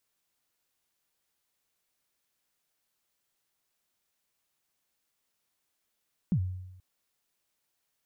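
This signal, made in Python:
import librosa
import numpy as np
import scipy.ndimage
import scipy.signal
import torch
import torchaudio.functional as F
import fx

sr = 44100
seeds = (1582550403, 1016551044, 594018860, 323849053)

y = fx.drum_kick(sr, seeds[0], length_s=0.48, level_db=-21, start_hz=210.0, end_hz=92.0, sweep_ms=75.0, decay_s=0.95, click=False)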